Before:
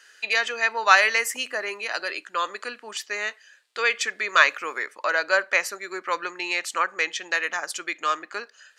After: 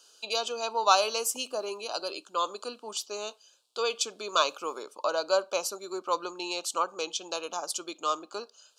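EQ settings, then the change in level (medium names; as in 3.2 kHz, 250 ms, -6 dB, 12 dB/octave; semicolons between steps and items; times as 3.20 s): Butterworth band-stop 1.9 kHz, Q 0.89; 0.0 dB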